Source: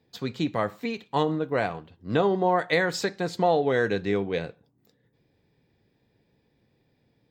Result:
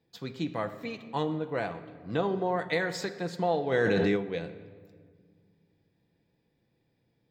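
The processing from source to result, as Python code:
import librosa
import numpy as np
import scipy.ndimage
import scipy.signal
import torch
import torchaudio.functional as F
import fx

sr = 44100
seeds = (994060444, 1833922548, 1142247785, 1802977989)

y = fx.room_shoebox(x, sr, seeds[0], volume_m3=3100.0, walls='mixed', distance_m=0.71)
y = fx.env_flatten(y, sr, amount_pct=100, at=(3.71, 4.15), fade=0.02)
y = F.gain(torch.from_numpy(y), -6.5).numpy()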